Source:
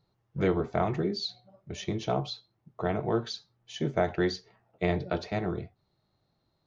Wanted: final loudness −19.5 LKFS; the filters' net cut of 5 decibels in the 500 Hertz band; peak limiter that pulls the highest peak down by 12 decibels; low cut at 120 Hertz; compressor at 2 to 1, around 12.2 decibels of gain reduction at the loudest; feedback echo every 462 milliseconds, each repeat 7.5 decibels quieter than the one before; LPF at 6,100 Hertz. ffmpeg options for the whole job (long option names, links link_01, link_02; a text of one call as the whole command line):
ffmpeg -i in.wav -af "highpass=120,lowpass=6100,equalizer=frequency=500:width_type=o:gain=-7,acompressor=threshold=-48dB:ratio=2,alimiter=level_in=12.5dB:limit=-24dB:level=0:latency=1,volume=-12.5dB,aecho=1:1:462|924|1386|1848|2310:0.422|0.177|0.0744|0.0312|0.0131,volume=28.5dB" out.wav